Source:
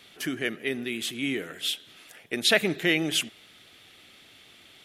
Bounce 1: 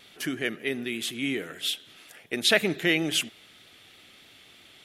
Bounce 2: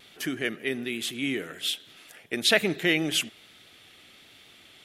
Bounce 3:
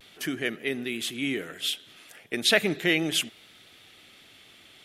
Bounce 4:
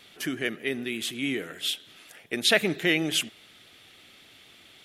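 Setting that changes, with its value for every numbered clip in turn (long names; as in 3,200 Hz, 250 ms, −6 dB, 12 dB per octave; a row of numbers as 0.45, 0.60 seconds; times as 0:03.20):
pitch vibrato, speed: 3.1, 1.2, 0.37, 8.8 Hertz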